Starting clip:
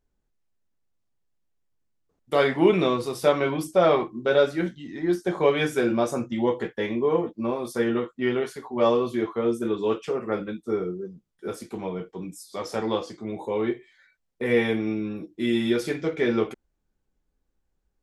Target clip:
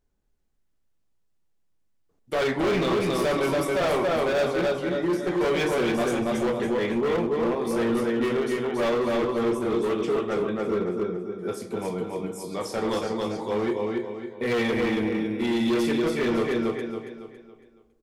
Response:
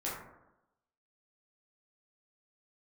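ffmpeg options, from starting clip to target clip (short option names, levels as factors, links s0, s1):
-filter_complex "[0:a]aecho=1:1:278|556|834|1112|1390:0.668|0.261|0.102|0.0396|0.0155,asoftclip=type=hard:threshold=0.075,asplit=2[s0][s1];[1:a]atrim=start_sample=2205,asetrate=22932,aresample=44100[s2];[s1][s2]afir=irnorm=-1:irlink=0,volume=0.126[s3];[s0][s3]amix=inputs=2:normalize=0"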